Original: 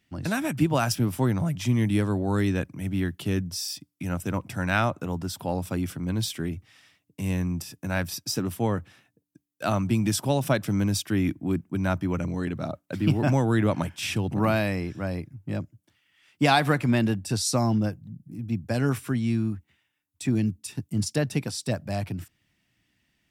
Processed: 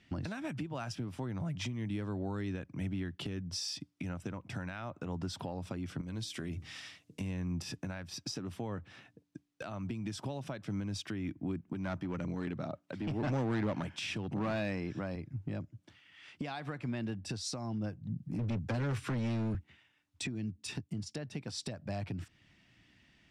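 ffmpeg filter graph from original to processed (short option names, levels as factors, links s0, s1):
-filter_complex "[0:a]asettb=1/sr,asplit=3[s0][s1][s2];[s0]atrim=end=6.014[s3];[s1]atrim=start=6.01:end=7.21,asetpts=PTS-STARTPTS,afade=t=in:d=0.004:c=qsin,afade=t=out:st=1.196:d=0.004:c=qsin,highshelf=f=4600:g=12,acompressor=threshold=0.01:ratio=16:attack=3.2:release=140:knee=1:detection=peak,bandreject=f=78.07:t=h:w=4,bandreject=f=156.14:t=h:w=4,bandreject=f=234.21:t=h:w=4,bandreject=f=312.28:t=h:w=4,bandreject=f=390.35:t=h:w=4,bandreject=f=468.42:t=h:w=4,bandreject=f=546.49:t=h:w=4,bandreject=f=624.56:t=h:w=4,bandreject=f=702.63:t=h:w=4[s4];[s2]atrim=start=7.206[s5];[s3][s4]acrossfade=d=0.004:c1=hsin:c2=qsin[s6];[s6][s5]acrossfade=d=0.004:c1=qsin:c2=hsin,asettb=1/sr,asplit=3[s7][s8][s9];[s7]atrim=end=11.684[s10];[s8]atrim=start=11.68:end=15.16,asetpts=PTS-STARTPTS,afade=t=in:d=0.004:c=qsin,afade=t=out:st=3.476:d=0.004:c=qsin,highpass=110,acontrast=26,asoftclip=type=hard:threshold=0.15[s11];[s9]atrim=start=15.156[s12];[s10][s11]acrossfade=d=0.004:c1=hsin:c2=qsin[s13];[s13][s12]acrossfade=d=0.004:c1=qsin:c2=hsin,asettb=1/sr,asplit=3[s14][s15][s16];[s14]atrim=end=18.194[s17];[s15]atrim=start=18.19:end=19.55,asetpts=PTS-STARTPTS,afade=t=in:d=0.004:c=qsin,afade=t=out:st=1.356:d=0.004:c=qsin,equalizer=f=340:w=0.73:g=-4,acrossover=split=140|290[s18][s19][s20];[s18]acompressor=threshold=0.0126:ratio=4[s21];[s19]acompressor=threshold=0.0112:ratio=4[s22];[s20]acompressor=threshold=0.00891:ratio=4[s23];[s21][s22][s23]amix=inputs=3:normalize=0,asoftclip=type=hard:threshold=0.0158[s24];[s16]atrim=start=19.546[s25];[s17][s24]acrossfade=d=0.004:c1=hsin:c2=qsin[s26];[s26][s25]acrossfade=d=0.004:c1=qsin:c2=hsin,lowpass=5300,acompressor=threshold=0.0141:ratio=12,alimiter=level_in=3.55:limit=0.0631:level=0:latency=1:release=376,volume=0.282,volume=2.11"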